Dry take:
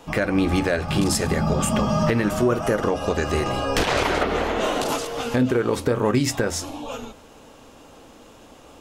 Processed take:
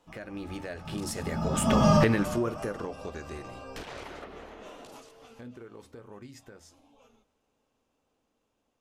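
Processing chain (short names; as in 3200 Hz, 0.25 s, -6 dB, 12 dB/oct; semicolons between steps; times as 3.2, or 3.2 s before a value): Doppler pass-by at 1.89, 12 m/s, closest 1.9 m; gain +1.5 dB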